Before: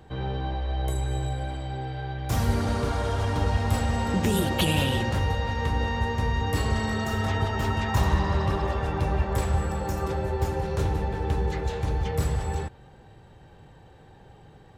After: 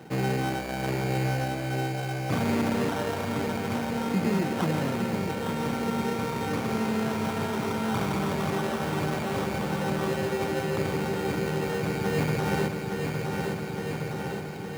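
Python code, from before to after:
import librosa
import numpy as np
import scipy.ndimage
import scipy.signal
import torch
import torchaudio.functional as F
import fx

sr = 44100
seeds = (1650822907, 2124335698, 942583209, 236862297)

p1 = 10.0 ** (-26.5 / 20.0) * (np.abs((x / 10.0 ** (-26.5 / 20.0) + 3.0) % 4.0 - 2.0) - 1.0)
p2 = x + (p1 * librosa.db_to_amplitude(-7.0))
p3 = fx.low_shelf(p2, sr, hz=220.0, db=9.0)
p4 = fx.sample_hold(p3, sr, seeds[0], rate_hz=2300.0, jitter_pct=0)
p5 = scipy.signal.sosfilt(scipy.signal.butter(4, 160.0, 'highpass', fs=sr, output='sos'), p4)
p6 = fx.high_shelf(p5, sr, hz=2800.0, db=-7.0)
p7 = p6 + fx.echo_feedback(p6, sr, ms=862, feedback_pct=54, wet_db=-8.5, dry=0)
p8 = fx.rider(p7, sr, range_db=10, speed_s=2.0)
y = p8 * librosa.db_to_amplitude(-2.0)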